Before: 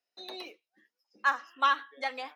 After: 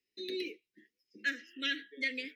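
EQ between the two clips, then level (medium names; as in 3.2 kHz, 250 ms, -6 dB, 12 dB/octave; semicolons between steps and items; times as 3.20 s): elliptic band-stop 410–2000 Hz, stop band 50 dB; treble shelf 2.7 kHz -11.5 dB; +9.0 dB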